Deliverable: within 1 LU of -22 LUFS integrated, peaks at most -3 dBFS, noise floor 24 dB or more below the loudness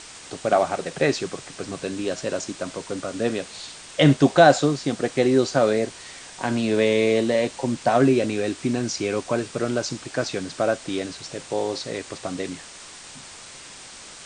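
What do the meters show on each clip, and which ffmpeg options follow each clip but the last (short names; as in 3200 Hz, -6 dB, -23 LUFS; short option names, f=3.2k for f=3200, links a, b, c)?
noise floor -42 dBFS; noise floor target -47 dBFS; loudness -23.0 LUFS; peak -2.5 dBFS; loudness target -22.0 LUFS
-> -af "afftdn=nr=6:nf=-42"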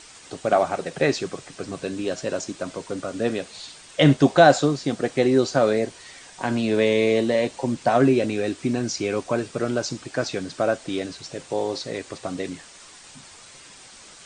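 noise floor -46 dBFS; noise floor target -47 dBFS
-> -af "afftdn=nr=6:nf=-46"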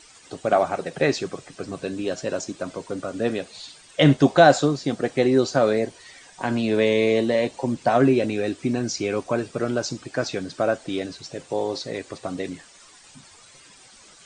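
noise floor -50 dBFS; loudness -23.0 LUFS; peak -2.5 dBFS; loudness target -22.0 LUFS
-> -af "volume=1dB,alimiter=limit=-3dB:level=0:latency=1"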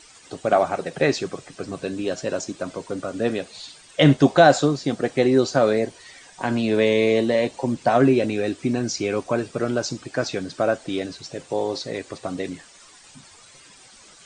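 loudness -22.0 LUFS; peak -3.0 dBFS; noise floor -49 dBFS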